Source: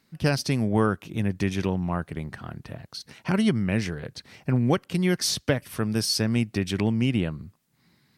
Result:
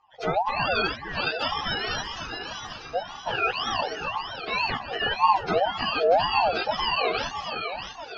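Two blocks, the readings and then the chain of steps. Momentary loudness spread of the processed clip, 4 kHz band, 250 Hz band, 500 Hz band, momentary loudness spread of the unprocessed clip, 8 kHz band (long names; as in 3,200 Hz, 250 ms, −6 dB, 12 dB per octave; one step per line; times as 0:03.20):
11 LU, +4.0 dB, −14.5 dB, +2.5 dB, 15 LU, −12.5 dB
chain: frequency axis turned over on the octave scale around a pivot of 650 Hz
low-pass filter 7,000 Hz 12 dB per octave
in parallel at −3 dB: brickwall limiter −21 dBFS, peak gain reduction 9.5 dB
on the sum: phaser with its sweep stopped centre 1,900 Hz, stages 8
delay that swaps between a low-pass and a high-pass 321 ms, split 1,100 Hz, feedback 70%, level −4 dB
ring modulator whose carrier an LFO sweeps 770 Hz, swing 30%, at 1.9 Hz
level +1 dB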